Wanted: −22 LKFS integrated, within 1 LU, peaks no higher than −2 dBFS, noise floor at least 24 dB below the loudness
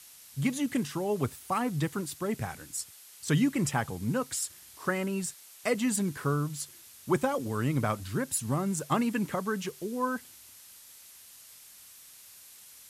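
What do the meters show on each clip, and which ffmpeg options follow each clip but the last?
background noise floor −53 dBFS; target noise floor −55 dBFS; integrated loudness −31.0 LKFS; sample peak −15.0 dBFS; target loudness −22.0 LKFS
→ -af "afftdn=noise_reduction=6:noise_floor=-53"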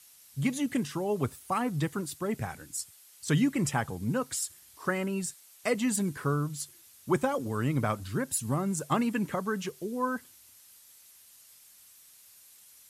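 background noise floor −57 dBFS; integrated loudness −31.5 LKFS; sample peak −15.0 dBFS; target loudness −22.0 LKFS
→ -af "volume=9.5dB"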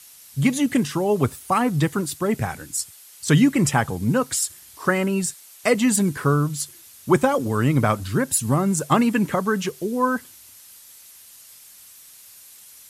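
integrated loudness −22.0 LKFS; sample peak −5.5 dBFS; background noise floor −47 dBFS

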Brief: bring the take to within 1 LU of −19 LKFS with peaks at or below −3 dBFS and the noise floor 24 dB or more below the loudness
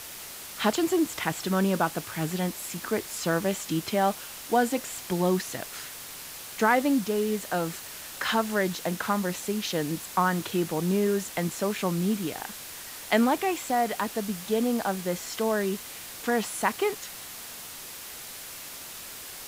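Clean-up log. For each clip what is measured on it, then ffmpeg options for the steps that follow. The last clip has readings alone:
background noise floor −41 dBFS; target noise floor −53 dBFS; integrated loudness −28.5 LKFS; sample peak −9.5 dBFS; target loudness −19.0 LKFS
→ -af "afftdn=noise_reduction=12:noise_floor=-41"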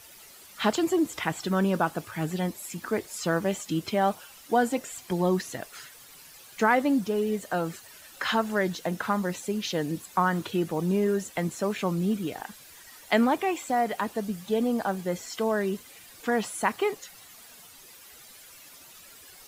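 background noise floor −50 dBFS; target noise floor −52 dBFS
→ -af "afftdn=noise_reduction=6:noise_floor=-50"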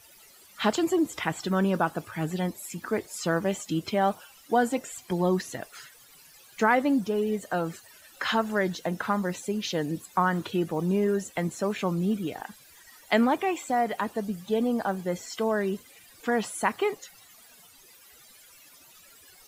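background noise floor −54 dBFS; integrated loudness −28.0 LKFS; sample peak −10.0 dBFS; target loudness −19.0 LKFS
→ -af "volume=9dB,alimiter=limit=-3dB:level=0:latency=1"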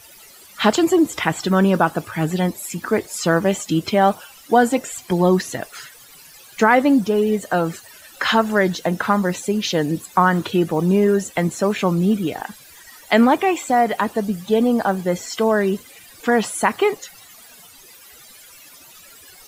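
integrated loudness −19.0 LKFS; sample peak −3.0 dBFS; background noise floor −45 dBFS

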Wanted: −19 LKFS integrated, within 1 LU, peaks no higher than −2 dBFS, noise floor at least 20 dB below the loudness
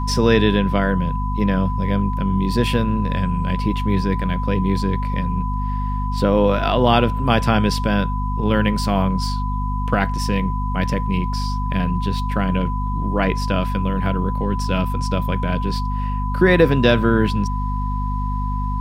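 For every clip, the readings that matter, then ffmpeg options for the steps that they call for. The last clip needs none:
mains hum 50 Hz; hum harmonics up to 250 Hz; level of the hum −20 dBFS; interfering tone 1,000 Hz; level of the tone −27 dBFS; integrated loudness −20.5 LKFS; sample peak −1.5 dBFS; target loudness −19.0 LKFS
→ -af "bandreject=frequency=50:width_type=h:width=6,bandreject=frequency=100:width_type=h:width=6,bandreject=frequency=150:width_type=h:width=6,bandreject=frequency=200:width_type=h:width=6,bandreject=frequency=250:width_type=h:width=6"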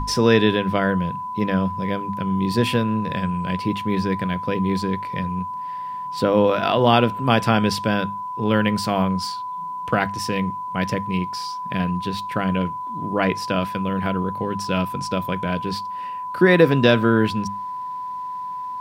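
mains hum none found; interfering tone 1,000 Hz; level of the tone −27 dBFS
→ -af "bandreject=frequency=1000:width=30"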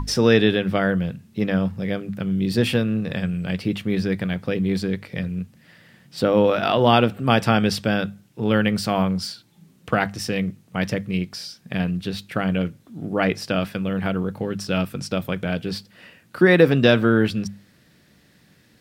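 interfering tone none found; integrated loudness −22.0 LKFS; sample peak −2.0 dBFS; target loudness −19.0 LKFS
→ -af "volume=3dB,alimiter=limit=-2dB:level=0:latency=1"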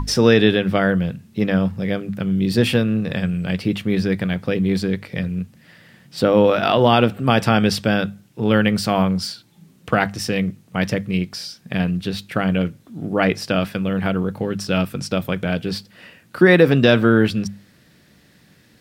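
integrated loudness −19.5 LKFS; sample peak −2.0 dBFS; background noise floor −54 dBFS

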